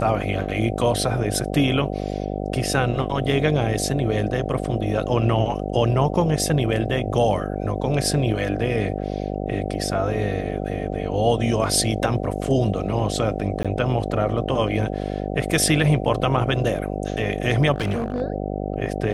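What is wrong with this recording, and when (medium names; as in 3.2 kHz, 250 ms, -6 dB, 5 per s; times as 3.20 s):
buzz 50 Hz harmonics 15 -27 dBFS
13.63–13.65 s: dropout 16 ms
17.74–18.22 s: clipped -19.5 dBFS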